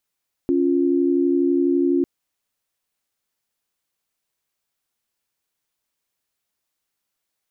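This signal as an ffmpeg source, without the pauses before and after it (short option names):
-f lavfi -i "aevalsrc='0.119*(sin(2*PI*277.18*t)+sin(2*PI*349.23*t))':d=1.55:s=44100"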